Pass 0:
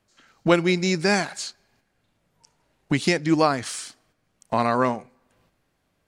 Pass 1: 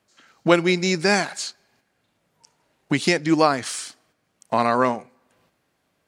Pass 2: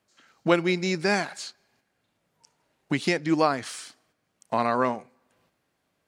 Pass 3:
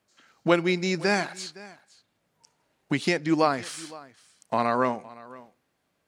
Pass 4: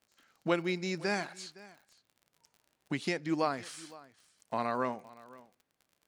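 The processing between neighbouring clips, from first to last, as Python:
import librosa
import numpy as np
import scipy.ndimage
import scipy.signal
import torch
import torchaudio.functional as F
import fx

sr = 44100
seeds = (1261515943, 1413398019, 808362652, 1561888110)

y1 = fx.highpass(x, sr, hz=180.0, slope=6)
y1 = y1 * 10.0 ** (2.5 / 20.0)
y2 = fx.dynamic_eq(y1, sr, hz=7800.0, q=0.78, threshold_db=-39.0, ratio=4.0, max_db=-5)
y2 = y2 * 10.0 ** (-4.5 / 20.0)
y3 = y2 + 10.0 ** (-20.5 / 20.0) * np.pad(y2, (int(513 * sr / 1000.0), 0))[:len(y2)]
y4 = fx.dmg_crackle(y3, sr, seeds[0], per_s=46.0, level_db=-40.0)
y4 = y4 * 10.0 ** (-8.5 / 20.0)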